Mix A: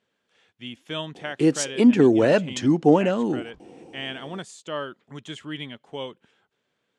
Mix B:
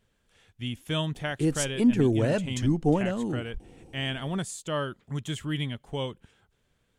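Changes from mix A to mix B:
background -9.0 dB; master: remove BPF 250–5700 Hz

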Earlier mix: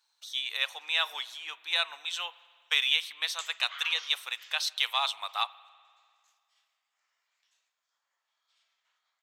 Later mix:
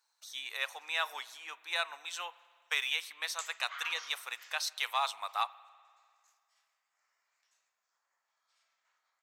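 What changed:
background: send +10.0 dB; master: add bell 3300 Hz -10.5 dB 0.75 oct

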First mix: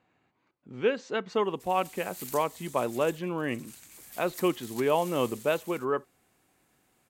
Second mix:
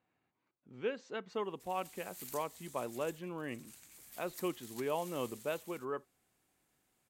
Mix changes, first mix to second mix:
speech -10.5 dB; background -6.5 dB

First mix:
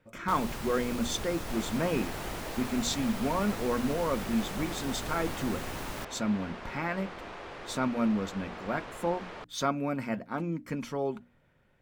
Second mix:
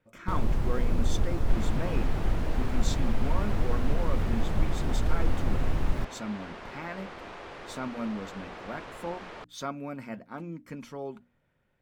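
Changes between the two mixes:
speech -6.0 dB; first sound: add tilt -3.5 dB/oct

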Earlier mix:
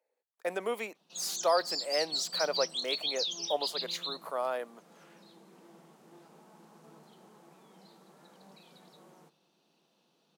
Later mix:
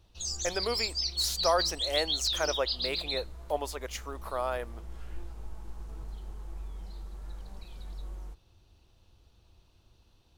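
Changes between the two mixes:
background: entry -0.95 s; master: remove rippled Chebyshev high-pass 150 Hz, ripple 3 dB

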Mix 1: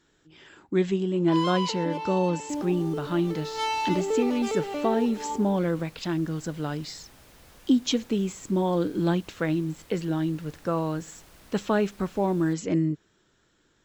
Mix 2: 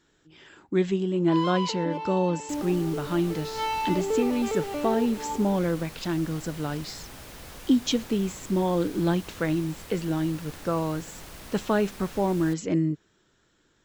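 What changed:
first sound: add high shelf 4300 Hz -9 dB; second sound +9.5 dB

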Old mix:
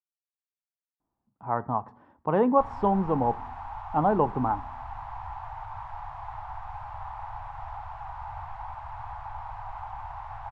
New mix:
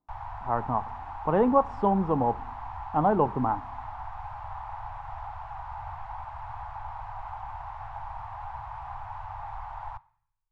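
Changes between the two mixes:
speech: entry -1.00 s; background: entry -2.50 s

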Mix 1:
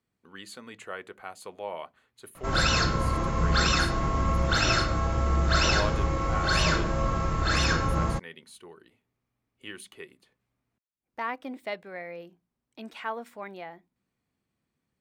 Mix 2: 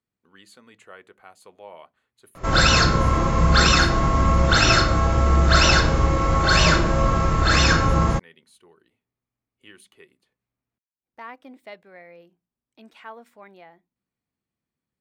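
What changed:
speech -6.5 dB; background +7.5 dB

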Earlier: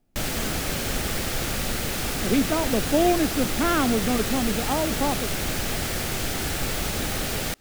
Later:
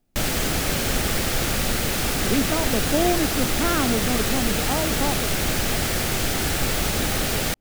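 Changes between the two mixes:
speech: send off; background +4.0 dB

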